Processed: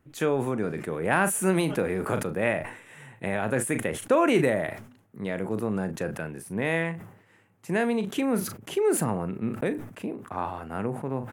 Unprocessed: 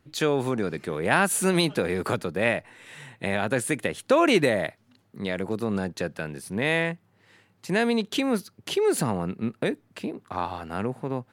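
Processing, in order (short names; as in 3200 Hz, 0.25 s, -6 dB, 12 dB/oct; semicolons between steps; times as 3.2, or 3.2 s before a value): bell 4300 Hz -13.5 dB 0.91 oct; doubler 37 ms -13 dB; sustainer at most 90 dB/s; gain -1.5 dB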